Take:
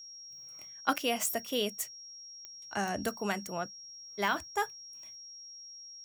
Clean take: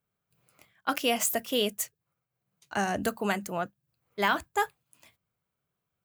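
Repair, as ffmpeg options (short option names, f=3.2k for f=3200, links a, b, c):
-af "adeclick=t=4,bandreject=f=5.6k:w=30,asetnsamples=n=441:p=0,asendcmd='0.93 volume volume 4.5dB',volume=0dB"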